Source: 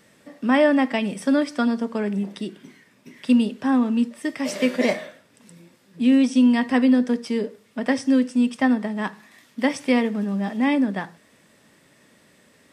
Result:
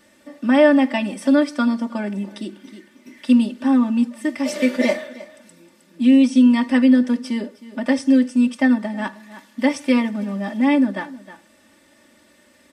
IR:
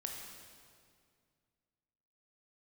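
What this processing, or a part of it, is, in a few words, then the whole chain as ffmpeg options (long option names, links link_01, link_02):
ducked delay: -filter_complex "[0:a]asplit=3[link_01][link_02][link_03];[link_02]adelay=313,volume=-8.5dB[link_04];[link_03]apad=whole_len=575130[link_05];[link_04][link_05]sidechaincompress=threshold=-40dB:ratio=4:attack=16:release=375[link_06];[link_01][link_06]amix=inputs=2:normalize=0,aecho=1:1:3.4:0.98,volume=-1.5dB"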